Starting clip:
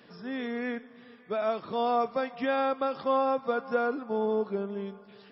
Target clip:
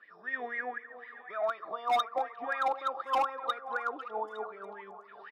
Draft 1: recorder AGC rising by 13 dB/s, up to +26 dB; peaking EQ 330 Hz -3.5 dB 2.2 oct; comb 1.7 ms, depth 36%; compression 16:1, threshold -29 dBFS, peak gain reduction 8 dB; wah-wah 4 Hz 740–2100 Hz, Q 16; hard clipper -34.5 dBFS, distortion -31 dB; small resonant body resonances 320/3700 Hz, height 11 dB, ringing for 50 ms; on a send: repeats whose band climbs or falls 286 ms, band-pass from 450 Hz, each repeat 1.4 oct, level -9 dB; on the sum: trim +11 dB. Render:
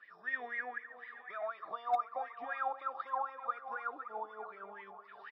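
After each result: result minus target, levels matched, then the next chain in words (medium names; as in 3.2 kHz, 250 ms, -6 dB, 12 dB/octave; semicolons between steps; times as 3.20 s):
compression: peak gain reduction +8 dB; 250 Hz band -3.5 dB
recorder AGC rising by 13 dB/s, up to +26 dB; peaking EQ 330 Hz -3.5 dB 2.2 oct; comb 1.7 ms, depth 36%; wah-wah 4 Hz 740–2100 Hz, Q 16; hard clipper -34.5 dBFS, distortion -13 dB; small resonant body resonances 320/3700 Hz, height 11 dB, ringing for 50 ms; on a send: repeats whose band climbs or falls 286 ms, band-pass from 450 Hz, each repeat 1.4 oct, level -9 dB; on the sum: trim +11 dB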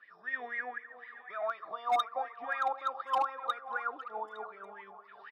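250 Hz band -5.0 dB
recorder AGC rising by 13 dB/s, up to +26 dB; peaking EQ 330 Hz +4 dB 2.2 oct; comb 1.7 ms, depth 36%; wah-wah 4 Hz 740–2100 Hz, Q 16; hard clipper -34.5 dBFS, distortion -9 dB; small resonant body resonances 320/3700 Hz, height 11 dB, ringing for 50 ms; on a send: repeats whose band climbs or falls 286 ms, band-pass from 450 Hz, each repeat 1.4 oct, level -9 dB; on the sum: trim +11 dB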